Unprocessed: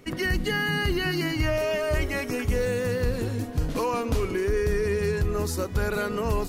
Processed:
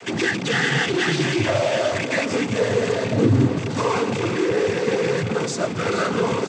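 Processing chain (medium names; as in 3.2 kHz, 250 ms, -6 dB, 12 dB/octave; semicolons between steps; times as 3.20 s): rattle on loud lows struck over -24 dBFS, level -20 dBFS; 3.10–3.57 s: resonant low shelf 530 Hz +9.5 dB, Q 1.5; in parallel at -12 dB: fuzz box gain 46 dB, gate -51 dBFS; on the sum: noise-vocoded speech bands 16; delay 434 ms -15.5 dB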